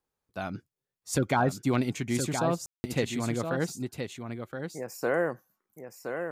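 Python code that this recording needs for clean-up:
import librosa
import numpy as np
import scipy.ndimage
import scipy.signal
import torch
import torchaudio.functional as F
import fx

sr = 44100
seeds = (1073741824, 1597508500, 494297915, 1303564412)

y = fx.fix_ambience(x, sr, seeds[0], print_start_s=0.0, print_end_s=0.5, start_s=2.66, end_s=2.84)
y = fx.fix_echo_inverse(y, sr, delay_ms=1020, level_db=-7.0)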